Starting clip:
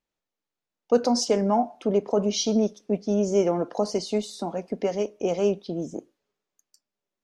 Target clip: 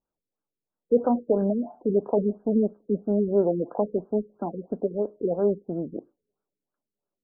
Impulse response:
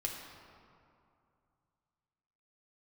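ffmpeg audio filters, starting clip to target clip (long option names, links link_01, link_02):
-af "afftfilt=real='re*lt(b*sr/1024,480*pow(1700/480,0.5+0.5*sin(2*PI*3*pts/sr)))':imag='im*lt(b*sr/1024,480*pow(1700/480,0.5+0.5*sin(2*PI*3*pts/sr)))':win_size=1024:overlap=0.75"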